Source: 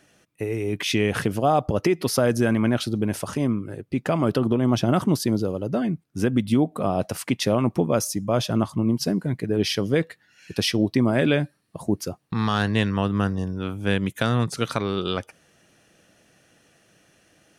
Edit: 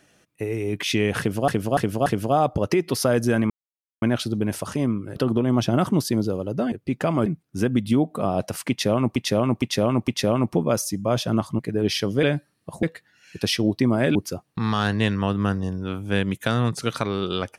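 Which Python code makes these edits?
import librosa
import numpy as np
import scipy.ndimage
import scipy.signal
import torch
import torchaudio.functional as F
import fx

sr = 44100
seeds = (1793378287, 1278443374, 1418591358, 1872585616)

y = fx.edit(x, sr, fx.repeat(start_s=1.19, length_s=0.29, count=4),
    fx.insert_silence(at_s=2.63, length_s=0.52),
    fx.move(start_s=3.77, length_s=0.54, to_s=5.87),
    fx.repeat(start_s=7.31, length_s=0.46, count=4),
    fx.cut(start_s=8.82, length_s=0.52),
    fx.move(start_s=11.3, length_s=0.6, to_s=9.98), tone=tone)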